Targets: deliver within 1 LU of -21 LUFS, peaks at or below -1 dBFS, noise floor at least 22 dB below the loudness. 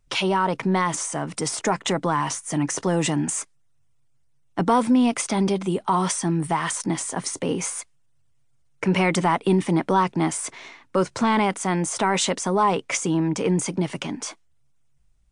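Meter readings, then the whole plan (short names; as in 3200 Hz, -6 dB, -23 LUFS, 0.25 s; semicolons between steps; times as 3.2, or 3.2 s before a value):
loudness -23.0 LUFS; peak -7.5 dBFS; loudness target -21.0 LUFS
-> gain +2 dB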